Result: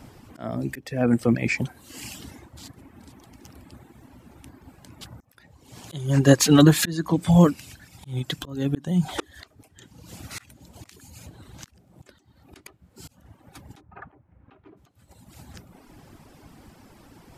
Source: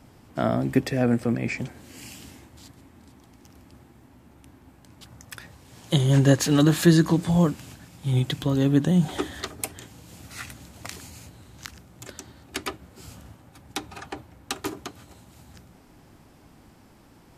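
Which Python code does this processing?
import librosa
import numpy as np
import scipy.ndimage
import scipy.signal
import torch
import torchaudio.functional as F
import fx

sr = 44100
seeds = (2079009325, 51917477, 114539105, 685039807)

y = fx.dereverb_blind(x, sr, rt60_s=0.98)
y = fx.lowpass(y, sr, hz=fx.line((13.8, 1700.0), (14.76, 3000.0)), slope=24, at=(13.8, 14.76), fade=0.02)
y = fx.auto_swell(y, sr, attack_ms=482.0)
y = y * 10.0 ** (6.0 / 20.0)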